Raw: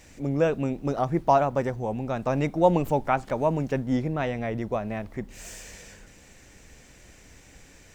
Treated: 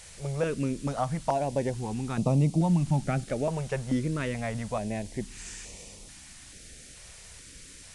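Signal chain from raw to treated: 2.18–3.24 s: peaking EQ 160 Hz +14.5 dB 1.2 oct; compression 4:1, threshold -21 dBFS, peak gain reduction 10.5 dB; added noise blue -44 dBFS; resampled via 22.05 kHz; step-sequenced notch 2.3 Hz 280–1600 Hz

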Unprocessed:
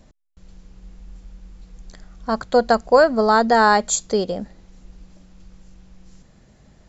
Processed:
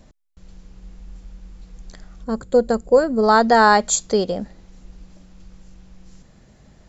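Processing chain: time-frequency box 2.24–3.23 s, 580–6700 Hz -11 dB; trim +1.5 dB

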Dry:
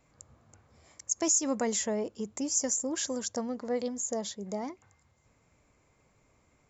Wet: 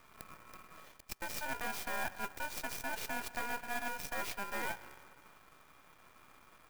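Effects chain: reverse; compression 16:1, threshold -41 dBFS, peak gain reduction 20 dB; reverse; low-pass 6.3 kHz 12 dB/octave; spring tank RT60 2.2 s, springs 47/51 ms, chirp 50 ms, DRR 14 dB; ring modulator 1.2 kHz; half-wave rectifier; sampling jitter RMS 0.034 ms; trim +12.5 dB

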